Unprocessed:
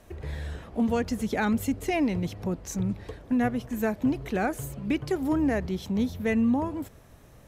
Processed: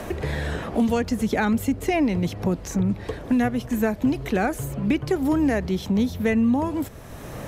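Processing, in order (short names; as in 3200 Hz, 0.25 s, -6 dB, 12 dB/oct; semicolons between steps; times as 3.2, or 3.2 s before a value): three-band squash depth 70%; gain +4 dB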